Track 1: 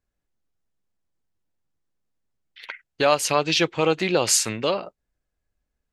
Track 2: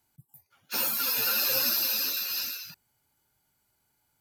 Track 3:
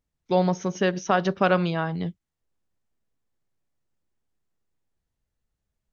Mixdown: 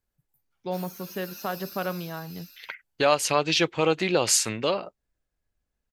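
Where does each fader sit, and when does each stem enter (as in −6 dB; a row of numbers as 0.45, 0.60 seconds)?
−2.0, −17.5, −9.5 decibels; 0.00, 0.00, 0.35 seconds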